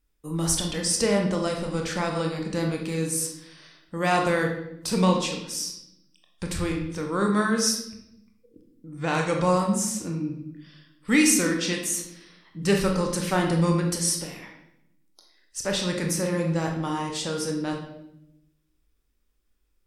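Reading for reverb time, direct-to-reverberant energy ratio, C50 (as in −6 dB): 0.80 s, 1.5 dB, 5.0 dB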